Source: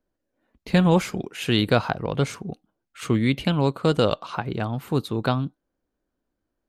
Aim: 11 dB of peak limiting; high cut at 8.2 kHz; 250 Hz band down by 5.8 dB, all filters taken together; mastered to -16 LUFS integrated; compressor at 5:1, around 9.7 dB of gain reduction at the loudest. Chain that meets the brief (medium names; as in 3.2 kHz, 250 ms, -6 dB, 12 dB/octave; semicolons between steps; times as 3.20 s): low-pass 8.2 kHz; peaking EQ 250 Hz -9 dB; compression 5:1, threshold -27 dBFS; trim +21.5 dB; peak limiter -4.5 dBFS